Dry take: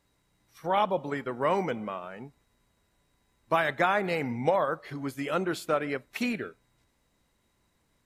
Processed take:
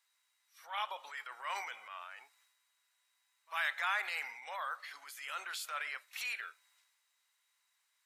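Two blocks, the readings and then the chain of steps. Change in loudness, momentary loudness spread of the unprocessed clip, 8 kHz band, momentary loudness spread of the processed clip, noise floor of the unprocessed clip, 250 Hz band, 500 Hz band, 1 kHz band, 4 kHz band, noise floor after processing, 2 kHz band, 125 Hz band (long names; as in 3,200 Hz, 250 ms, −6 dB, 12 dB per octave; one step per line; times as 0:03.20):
−10.0 dB, 12 LU, −0.5 dB, 14 LU, −72 dBFS, below −40 dB, −25.5 dB, −11.5 dB, −2.5 dB, −79 dBFS, −4.0 dB, below −40 dB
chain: Bessel high-pass filter 1,600 Hz, order 4
transient designer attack −7 dB, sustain +6 dB
backwards echo 48 ms −22.5 dB
level −1 dB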